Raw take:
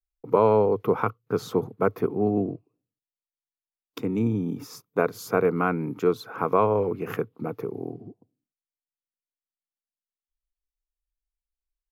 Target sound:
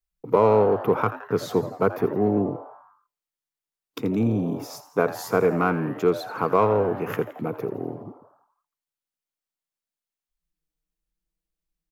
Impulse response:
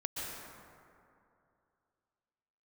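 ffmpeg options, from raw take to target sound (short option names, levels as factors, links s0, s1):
-filter_complex "[0:a]asplit=2[s0][s1];[s1]asoftclip=type=tanh:threshold=0.0794,volume=0.398[s2];[s0][s2]amix=inputs=2:normalize=0,asplit=7[s3][s4][s5][s6][s7][s8][s9];[s4]adelay=84,afreqshift=150,volume=0.188[s10];[s5]adelay=168,afreqshift=300,volume=0.106[s11];[s6]adelay=252,afreqshift=450,volume=0.0589[s12];[s7]adelay=336,afreqshift=600,volume=0.0331[s13];[s8]adelay=420,afreqshift=750,volume=0.0186[s14];[s9]adelay=504,afreqshift=900,volume=0.0104[s15];[s3][s10][s11][s12][s13][s14][s15]amix=inputs=7:normalize=0"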